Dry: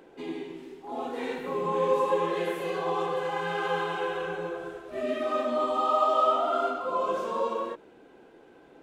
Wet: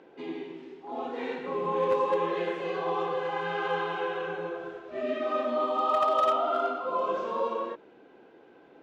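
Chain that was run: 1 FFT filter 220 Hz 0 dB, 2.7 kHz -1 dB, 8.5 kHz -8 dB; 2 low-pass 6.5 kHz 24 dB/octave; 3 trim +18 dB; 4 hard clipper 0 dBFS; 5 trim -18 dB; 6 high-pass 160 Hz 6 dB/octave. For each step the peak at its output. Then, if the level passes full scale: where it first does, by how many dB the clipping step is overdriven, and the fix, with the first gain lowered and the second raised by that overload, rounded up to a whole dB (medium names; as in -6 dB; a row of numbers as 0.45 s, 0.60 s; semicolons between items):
-12.0 dBFS, -12.0 dBFS, +6.0 dBFS, 0.0 dBFS, -18.0 dBFS, -16.0 dBFS; step 3, 6.0 dB; step 3 +12 dB, step 5 -12 dB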